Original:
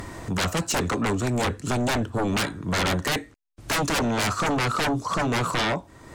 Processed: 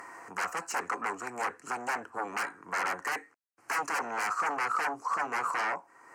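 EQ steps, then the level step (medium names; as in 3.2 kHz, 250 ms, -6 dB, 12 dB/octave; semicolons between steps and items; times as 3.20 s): resonant high-pass 640 Hz, resonance Q 5.7; treble shelf 9.2 kHz -11 dB; static phaser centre 1.5 kHz, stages 4; -4.0 dB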